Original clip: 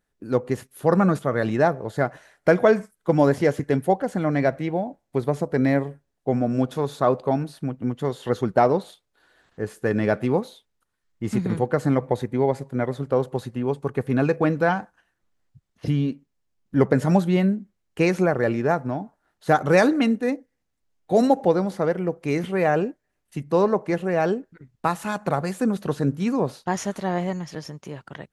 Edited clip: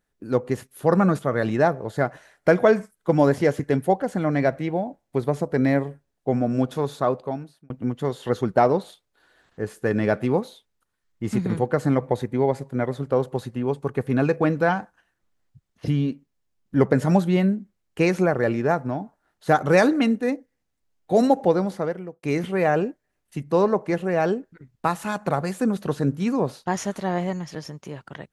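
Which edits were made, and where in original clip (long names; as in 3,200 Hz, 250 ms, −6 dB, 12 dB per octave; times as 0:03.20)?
0:06.87–0:07.70: fade out
0:21.67–0:22.23: fade out linear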